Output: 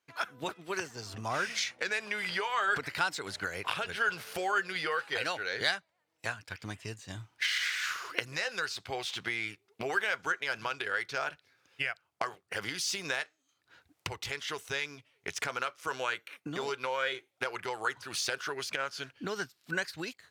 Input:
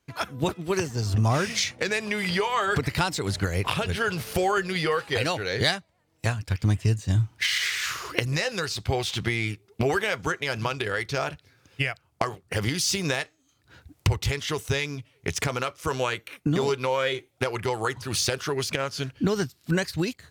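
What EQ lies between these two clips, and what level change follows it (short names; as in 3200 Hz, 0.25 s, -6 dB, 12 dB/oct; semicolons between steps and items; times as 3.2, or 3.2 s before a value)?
HPF 930 Hz 6 dB/oct; dynamic EQ 1500 Hz, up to +7 dB, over -48 dBFS, Q 6; high shelf 4600 Hz -7 dB; -3.5 dB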